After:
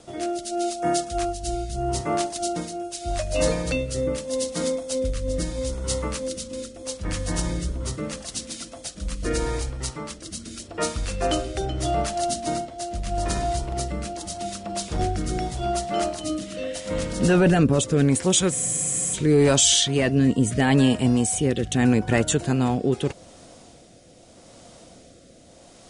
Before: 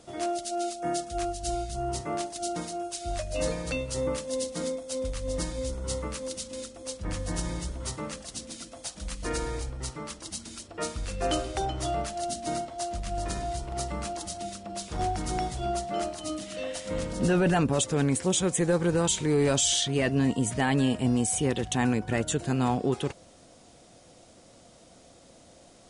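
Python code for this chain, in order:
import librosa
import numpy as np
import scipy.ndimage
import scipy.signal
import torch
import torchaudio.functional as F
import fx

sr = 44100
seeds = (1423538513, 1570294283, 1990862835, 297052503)

y = fx.rotary(x, sr, hz=0.8)
y = fx.spec_freeze(y, sr, seeds[0], at_s=18.54, hold_s=0.61)
y = F.gain(torch.from_numpy(y), 7.5).numpy()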